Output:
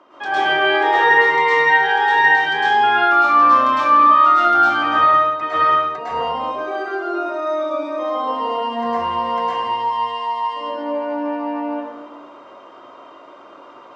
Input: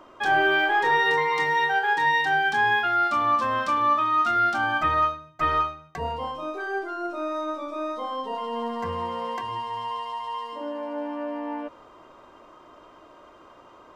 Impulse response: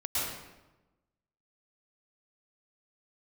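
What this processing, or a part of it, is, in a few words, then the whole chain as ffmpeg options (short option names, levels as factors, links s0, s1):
supermarket ceiling speaker: -filter_complex "[0:a]highpass=250,lowpass=5300[s0];[1:a]atrim=start_sample=2205[s1];[s0][s1]afir=irnorm=-1:irlink=0,volume=1.19"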